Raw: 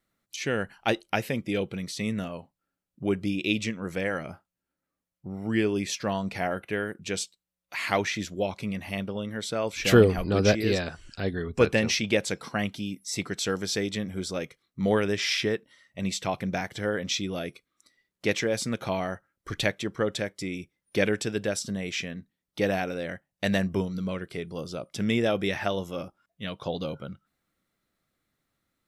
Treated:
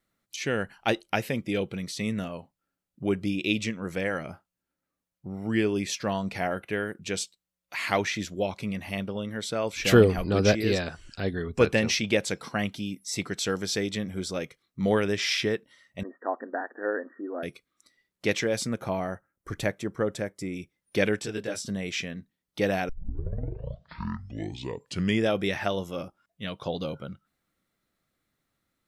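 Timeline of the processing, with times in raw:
0:16.03–0:17.43: linear-phase brick-wall band-pass 230–1,900 Hz
0:18.67–0:20.56: parametric band 3,500 Hz −10.5 dB 1.4 octaves
0:21.19–0:21.65: micro pitch shift up and down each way 19 cents
0:22.89: tape start 2.41 s

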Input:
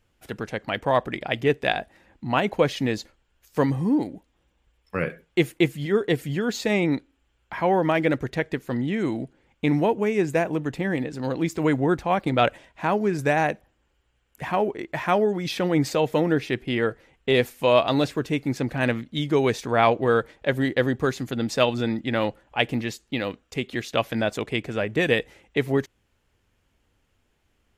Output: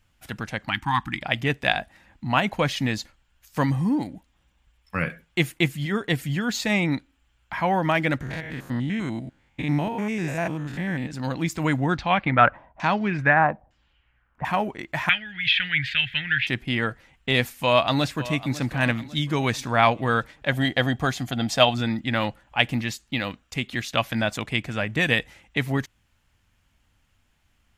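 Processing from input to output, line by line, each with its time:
0:00.70–0:01.22: time-frequency box erased 350–760 Hz
0:08.21–0:11.11: spectrum averaged block by block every 100 ms
0:11.89–0:14.45: auto-filter low-pass saw down 1.1 Hz 630–5,700 Hz
0:15.09–0:16.47: drawn EQ curve 110 Hz 0 dB, 200 Hz −16 dB, 440 Hz −29 dB, 760 Hz −23 dB, 1,100 Hz −21 dB, 1,600 Hz +10 dB, 3,200 Hz +11 dB, 5,600 Hz −19 dB, 8,600 Hz −25 dB
0:17.50–0:18.60: delay throw 550 ms, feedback 45%, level −15.5 dB
0:20.52–0:21.75: hollow resonant body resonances 710/3,200 Hz, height 13 dB, ringing for 35 ms
whole clip: parametric band 420 Hz −13 dB 0.94 octaves; level +3.5 dB

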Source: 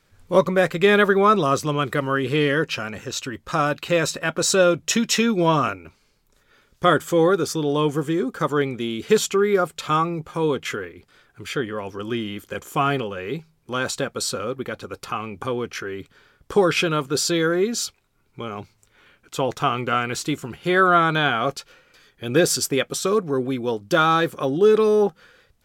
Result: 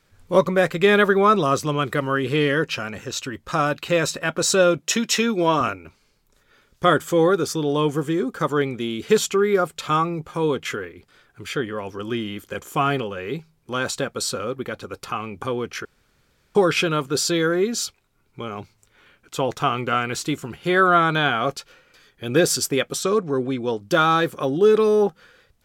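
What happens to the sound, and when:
0:04.78–0:05.61: high-pass filter 210 Hz
0:15.85–0:16.55: fill with room tone
0:23.03–0:23.79: low-pass filter 8,900 Hz 24 dB per octave

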